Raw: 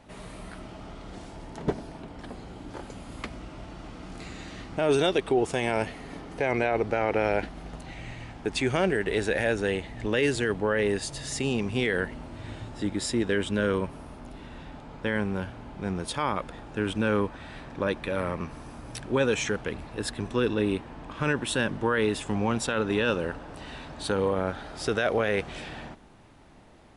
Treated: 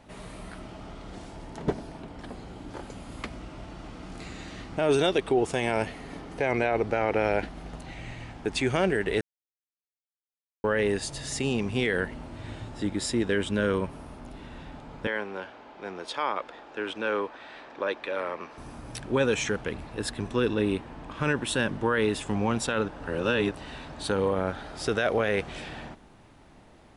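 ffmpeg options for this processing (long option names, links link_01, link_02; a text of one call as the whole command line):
ffmpeg -i in.wav -filter_complex "[0:a]asettb=1/sr,asplit=3[link_01][link_02][link_03];[link_01]atrim=end=15.074[link_04];[link_02]atrim=start=15.07:end=18.58,asetpts=PTS-STARTPTS,afade=type=in:duration=0.004:curve=qsin,afade=type=out:start_time=3.506:duration=0.004:curve=qsin,acrossover=split=320 6400:gain=0.0631 1 0.1[link_05][link_06][link_07];[link_05][link_06][link_07]amix=inputs=3:normalize=0[link_08];[link_03]atrim=start=18.576[link_09];[link_04][link_08]acrossfade=duration=0.004:curve1=hsin:curve2=qsin[link_10];[link_10][link_09]acrossfade=duration=0.004:curve1=qsin:curve2=hsin,asplit=5[link_11][link_12][link_13][link_14][link_15];[link_11]atrim=end=9.21,asetpts=PTS-STARTPTS,afade=type=out:start_time=9.206:duration=0.004:curve=hsin[link_16];[link_12]atrim=start=9.21:end=10.64,asetpts=PTS-STARTPTS,volume=0[link_17];[link_13]atrim=start=10.64:end=22.882,asetpts=PTS-STARTPTS,afade=type=in:duration=0.004:curve=hsin[link_18];[link_14]atrim=start=22.878:end=23.512,asetpts=PTS-STARTPTS,areverse[link_19];[link_15]atrim=start=23.508[link_20];[link_16][link_17][link_18]concat=n=3:v=0:a=1[link_21];[link_21][link_19]acrossfade=duration=0.004:curve1=hsin:curve2=hsin[link_22];[link_22][link_20]acrossfade=duration=0.004:curve1=hsin:curve2=hsin" out.wav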